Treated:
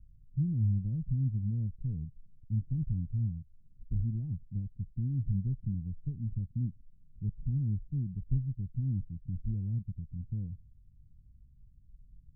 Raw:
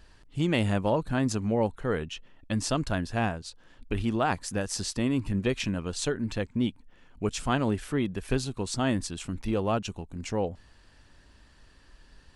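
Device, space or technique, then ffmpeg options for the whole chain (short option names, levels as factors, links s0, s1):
the neighbour's flat through the wall: -af "lowpass=f=160:w=0.5412,lowpass=f=160:w=1.3066,equalizer=f=130:t=o:w=0.77:g=3.5"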